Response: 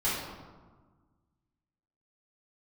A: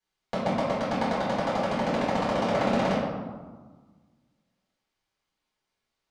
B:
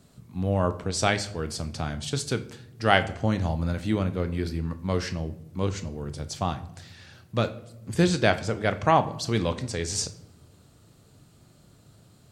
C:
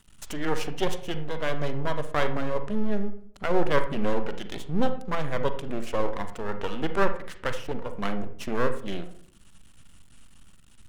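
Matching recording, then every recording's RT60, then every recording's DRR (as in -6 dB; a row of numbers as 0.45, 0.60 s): A; 1.4 s, not exponential, not exponential; -11.5, 10.5, 8.5 dB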